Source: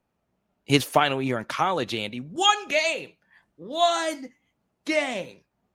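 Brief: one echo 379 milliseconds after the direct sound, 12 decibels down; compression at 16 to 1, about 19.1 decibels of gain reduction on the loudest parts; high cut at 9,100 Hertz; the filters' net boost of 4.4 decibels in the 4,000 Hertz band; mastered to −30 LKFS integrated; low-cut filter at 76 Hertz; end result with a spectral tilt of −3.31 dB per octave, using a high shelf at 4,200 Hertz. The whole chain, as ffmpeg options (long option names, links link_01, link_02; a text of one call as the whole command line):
ffmpeg -i in.wav -af "highpass=76,lowpass=9100,equalizer=frequency=4000:width_type=o:gain=3.5,highshelf=frequency=4200:gain=4.5,acompressor=threshold=-31dB:ratio=16,aecho=1:1:379:0.251,volume=6.5dB" out.wav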